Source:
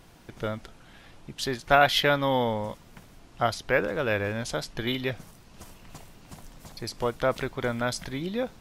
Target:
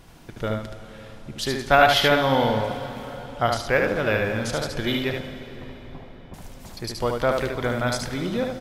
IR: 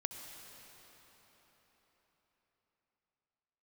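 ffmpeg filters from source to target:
-filter_complex "[0:a]asettb=1/sr,asplit=3[link_01][link_02][link_03];[link_01]atrim=end=5.194[link_04];[link_02]atrim=start=5.19:end=6.34,asetpts=PTS-STARTPTS,afade=type=in:duration=0.004:curve=qsin,afade=type=out:start_time=1.146:duration=0.004:curve=qsin,lowpass=frequency=1100:width=0.5412,lowpass=frequency=1100:width=1.3066[link_05];[link_03]atrim=start=6.336[link_06];[link_04][link_05]acrossfade=duration=0.004:curve1=hsin:curve2=qsin[link_07];[link_07][link_06]acrossfade=duration=0.004:curve1=qsin:curve2=hsin,aecho=1:1:74:0.631,asplit=2[link_08][link_09];[1:a]atrim=start_sample=2205,lowshelf=frequency=160:gain=5.5[link_10];[link_09][link_10]afir=irnorm=-1:irlink=0,volume=-0.5dB[link_11];[link_08][link_11]amix=inputs=2:normalize=0,volume=-2.5dB"

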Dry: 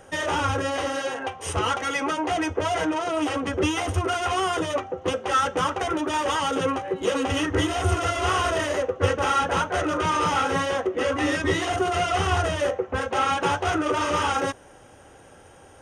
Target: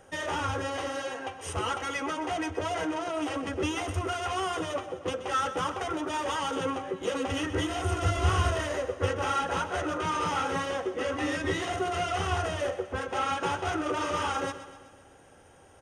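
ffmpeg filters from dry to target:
ffmpeg -i in.wav -filter_complex "[0:a]asettb=1/sr,asplit=3[link_01][link_02][link_03];[link_01]atrim=end=8.024[link_04];[link_02]atrim=start=8.02:end=8.51,asetpts=PTS-STARTPTS,afade=type=in:duration=0.004:curve=qsin,afade=type=out:start_time=0.486:duration=0.004:curve=qsin,bass=frequency=250:gain=13,treble=frequency=4000:gain=1[link_05];[link_03]atrim=start=8.506[link_06];[link_04][link_05]acrossfade=duration=0.004:curve1=hsin:curve2=qsin[link_07];[link_07][link_06]acrossfade=duration=0.004:curve1=qsin:curve2=hsin,aecho=1:1:127|254|381|508|635|762:0.224|0.123|0.0677|0.0372|0.0205|0.0113,volume=-6.5dB" out.wav

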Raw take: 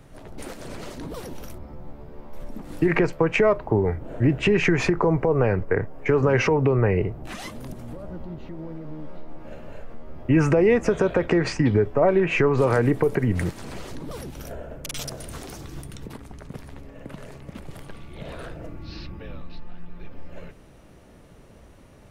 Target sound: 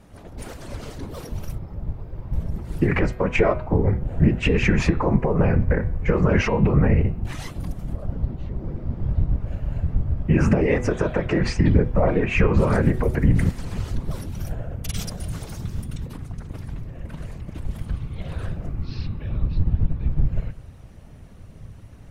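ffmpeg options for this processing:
ffmpeg -i in.wav -af "asubboost=boost=4:cutoff=130,afftfilt=real='hypot(re,im)*cos(2*PI*random(0))':imag='hypot(re,im)*sin(2*PI*random(1))':win_size=512:overlap=0.75,bandreject=frequency=123.9:width_type=h:width=4,bandreject=frequency=247.8:width_type=h:width=4,bandreject=frequency=371.7:width_type=h:width=4,bandreject=frequency=495.6:width_type=h:width=4,bandreject=frequency=619.5:width_type=h:width=4,bandreject=frequency=743.4:width_type=h:width=4,bandreject=frequency=867.3:width_type=h:width=4,bandreject=frequency=991.2:width_type=h:width=4,bandreject=frequency=1115.1:width_type=h:width=4,bandreject=frequency=1239:width_type=h:width=4,bandreject=frequency=1362.9:width_type=h:width=4,bandreject=frequency=1486.8:width_type=h:width=4,bandreject=frequency=1610.7:width_type=h:width=4,bandreject=frequency=1734.6:width_type=h:width=4,bandreject=frequency=1858.5:width_type=h:width=4,bandreject=frequency=1982.4:width_type=h:width=4,bandreject=frequency=2106.3:width_type=h:width=4,bandreject=frequency=2230.2:width_type=h:width=4,bandreject=frequency=2354.1:width_type=h:width=4,bandreject=frequency=2478:width_type=h:width=4,bandreject=frequency=2601.9:width_type=h:width=4,bandreject=frequency=2725.8:width_type=h:width=4,bandreject=frequency=2849.7:width_type=h:width=4,bandreject=frequency=2973.6:width_type=h:width=4,bandreject=frequency=3097.5:width_type=h:width=4,bandreject=frequency=3221.4:width_type=h:width=4,bandreject=frequency=3345.3:width_type=h:width=4,bandreject=frequency=3469.2:width_type=h:width=4,bandreject=frequency=3593.1:width_type=h:width=4,bandreject=frequency=3717:width_type=h:width=4,bandreject=frequency=3840.9:width_type=h:width=4,bandreject=frequency=3964.8:width_type=h:width=4,bandreject=frequency=4088.7:width_type=h:width=4,bandreject=frequency=4212.6:width_type=h:width=4,volume=5.5dB" out.wav

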